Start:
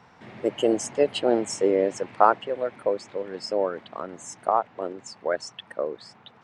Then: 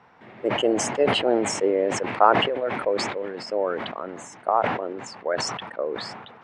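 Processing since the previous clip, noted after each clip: tone controls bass -6 dB, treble -12 dB; sustainer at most 43 dB/s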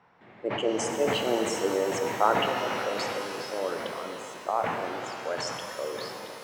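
shimmer reverb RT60 3.5 s, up +12 st, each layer -8 dB, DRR 3 dB; gain -7 dB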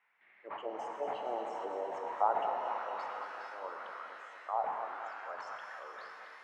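auto-wah 800–2200 Hz, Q 3, down, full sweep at -23.5 dBFS; thinning echo 0.231 s, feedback 71%, high-pass 220 Hz, level -10 dB; gain -3 dB

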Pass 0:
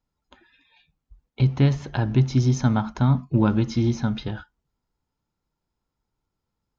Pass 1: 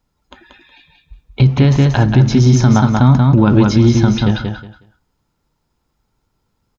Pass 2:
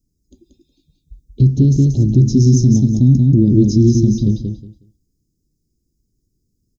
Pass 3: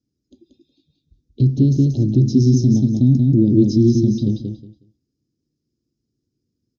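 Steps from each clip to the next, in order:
on a send: feedback echo 0.183 s, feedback 21%, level -5 dB; on the sum: maximiser +13 dB; gain -1 dB
Chebyshev band-stop 350–5700 Hz, order 3
speaker cabinet 140–5000 Hz, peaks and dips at 180 Hz -8 dB, 410 Hz -3 dB, 960 Hz -6 dB, 2100 Hz -6 dB; gain +1 dB

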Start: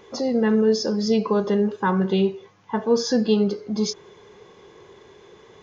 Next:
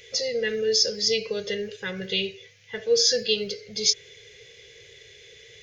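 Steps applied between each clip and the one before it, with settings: EQ curve 120 Hz 0 dB, 280 Hz -27 dB, 480 Hz 0 dB, 1000 Hz -28 dB, 2000 Hz +9 dB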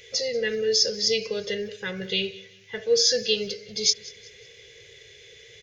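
feedback echo 0.186 s, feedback 37%, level -21 dB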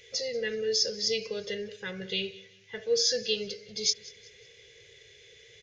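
downsampling 22050 Hz; gain -5.5 dB

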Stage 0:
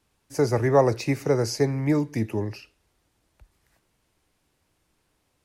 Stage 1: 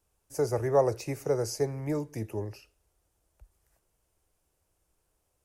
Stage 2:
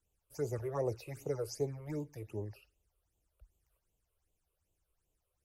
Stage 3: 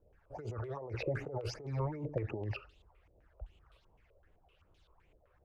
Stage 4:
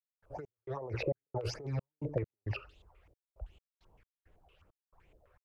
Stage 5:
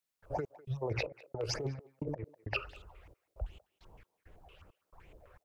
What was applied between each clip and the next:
graphic EQ 125/250/1000/2000/4000 Hz -6/-12/-5/-9/-10 dB
phaser stages 8, 2.6 Hz, lowest notch 220–1700 Hz; gain -6 dB
negative-ratio compressor -47 dBFS, ratio -1; stepped low-pass 7.8 Hz 580–3700 Hz; gain +7 dB
step gate ".x.xx.xx.x.xxx.x" 67 bpm -60 dB; gain +2.5 dB
spectral gain 0.55–0.82, 220–2400 Hz -26 dB; negative-ratio compressor -39 dBFS, ratio -0.5; speakerphone echo 0.2 s, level -19 dB; gain +4 dB

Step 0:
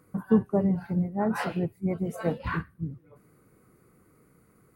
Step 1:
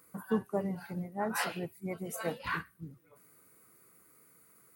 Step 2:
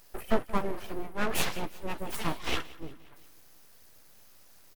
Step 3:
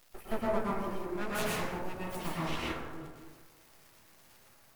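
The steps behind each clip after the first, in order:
tilt +3.5 dB/oct; gain -3 dB
doubler 13 ms -14 dB; full-wave rectifier; feedback echo 0.176 s, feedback 54%, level -20 dB; gain +6.5 dB
crackle 200/s -39 dBFS; plate-style reverb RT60 1.3 s, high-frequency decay 0.3×, pre-delay 95 ms, DRR -6 dB; gain -9 dB

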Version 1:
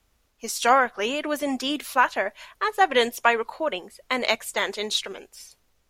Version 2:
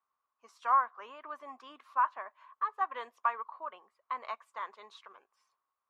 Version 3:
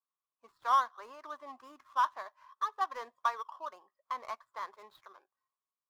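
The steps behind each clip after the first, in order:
band-pass 1100 Hz, Q 9.4
median filter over 15 samples; spectral noise reduction 13 dB

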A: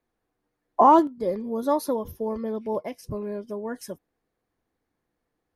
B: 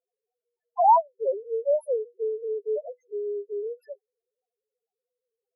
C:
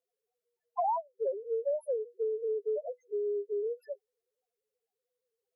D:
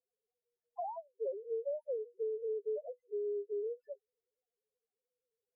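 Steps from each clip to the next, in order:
Wiener smoothing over 9 samples; Chebyshev high-pass 400 Hz, order 6; loudest bins only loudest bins 1; gain +8 dB
compressor 6:1, threshold -29 dBFS, peak gain reduction 15 dB
running mean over 38 samples; gain -2.5 dB

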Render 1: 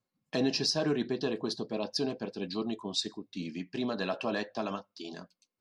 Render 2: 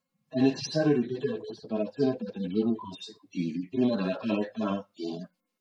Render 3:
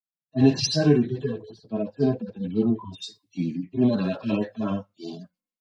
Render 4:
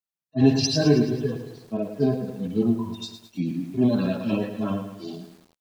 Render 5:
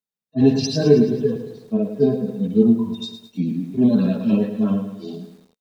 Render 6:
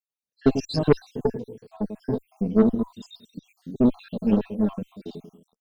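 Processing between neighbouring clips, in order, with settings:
median-filter separation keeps harmonic; vocal rider within 4 dB 2 s; gain +6.5 dB
bell 96 Hz +12 dB 1.6 oct; in parallel at -2 dB: limiter -19.5 dBFS, peak gain reduction 10 dB; on the sum: three-band expander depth 100%; gain -3 dB
lo-fi delay 0.108 s, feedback 55%, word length 8-bit, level -9 dB
small resonant body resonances 210/440/3700 Hz, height 12 dB, ringing for 45 ms; gain -2.5 dB
random spectral dropouts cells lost 64%; added harmonics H 3 -21 dB, 6 -20 dB, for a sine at -1.5 dBFS; soft clip -4.5 dBFS, distortion -21 dB

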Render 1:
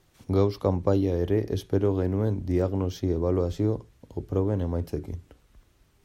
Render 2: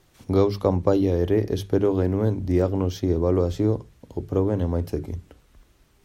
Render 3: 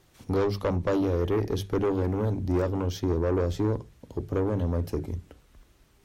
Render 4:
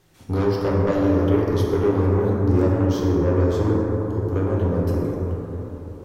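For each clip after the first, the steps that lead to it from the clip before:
notches 50/100/150/200 Hz; gain +4 dB
tube stage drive 20 dB, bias 0.35
plate-style reverb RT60 4 s, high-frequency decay 0.25×, DRR -4 dB

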